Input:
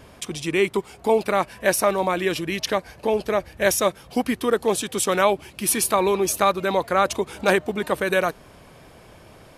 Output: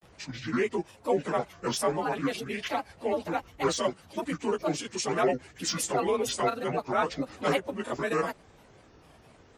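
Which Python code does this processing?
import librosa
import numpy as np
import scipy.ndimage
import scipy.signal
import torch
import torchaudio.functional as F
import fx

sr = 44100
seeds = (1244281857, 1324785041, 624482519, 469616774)

y = fx.partial_stretch(x, sr, pct=92)
y = fx.granulator(y, sr, seeds[0], grain_ms=107.0, per_s=20.0, spray_ms=15.0, spread_st=7)
y = y * librosa.db_to_amplitude(-4.0)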